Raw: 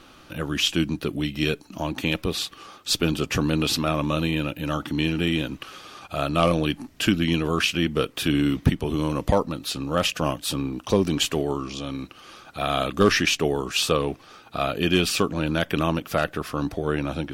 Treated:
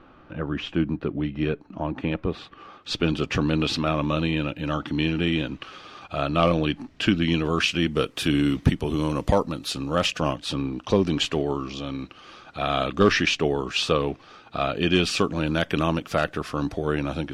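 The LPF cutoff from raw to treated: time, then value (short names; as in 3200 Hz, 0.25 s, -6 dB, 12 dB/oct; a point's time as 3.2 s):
2.41 s 1600 Hz
3.11 s 4300 Hz
7.09 s 4300 Hz
8.16 s 10000 Hz
9.73 s 10000 Hz
10.46 s 4800 Hz
14.77 s 4800 Hz
15.42 s 8200 Hz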